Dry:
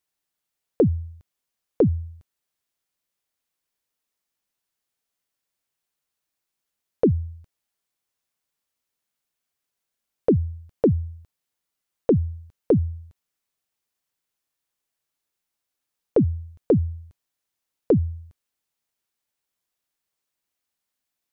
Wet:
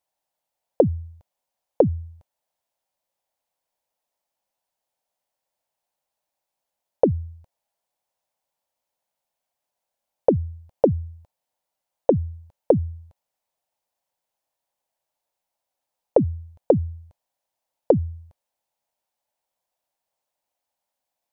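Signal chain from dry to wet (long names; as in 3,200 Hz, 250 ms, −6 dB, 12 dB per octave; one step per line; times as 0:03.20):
flat-topped bell 710 Hz +12.5 dB 1.1 octaves
level −2.5 dB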